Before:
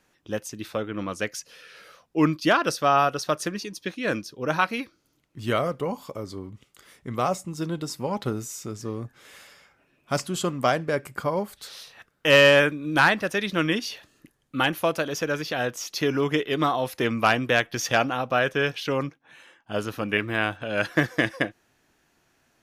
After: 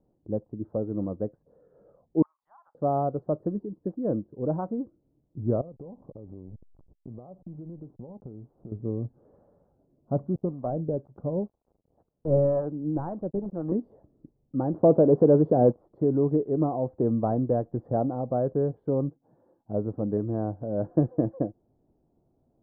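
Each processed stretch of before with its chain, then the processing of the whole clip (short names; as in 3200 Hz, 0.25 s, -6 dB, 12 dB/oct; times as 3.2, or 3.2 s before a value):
2.22–2.75 Chebyshev high-pass 820 Hz, order 6 + compressor 16:1, threshold -32 dBFS + three-band expander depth 70%
5.61–8.72 backlash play -37.5 dBFS + compressor 12:1, threshold -39 dBFS
10.35–13.72 switching dead time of 0.19 ms + harmonic tremolo 2 Hz, crossover 630 Hz
14.74–15.73 sample leveller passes 3 + speaker cabinet 130–9000 Hz, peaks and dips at 420 Hz +3 dB, 2000 Hz -4 dB, 2900 Hz +4 dB
whole clip: inverse Chebyshev low-pass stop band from 2400 Hz, stop band 60 dB; low shelf 360 Hz +6.5 dB; gain -2.5 dB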